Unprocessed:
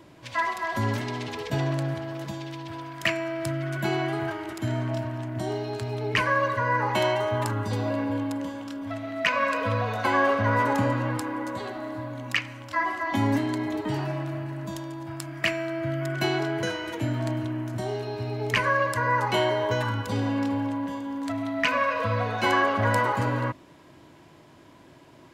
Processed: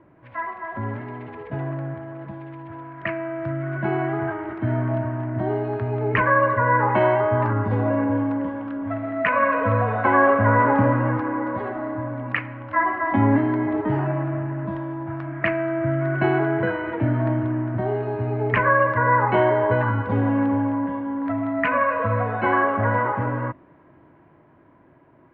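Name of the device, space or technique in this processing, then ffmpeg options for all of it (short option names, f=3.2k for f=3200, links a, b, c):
action camera in a waterproof case: -af "lowpass=f=1.9k:w=0.5412,lowpass=f=1.9k:w=1.3066,dynaudnorm=f=700:g=11:m=10dB,volume=-2.5dB" -ar 16000 -c:a aac -b:a 64k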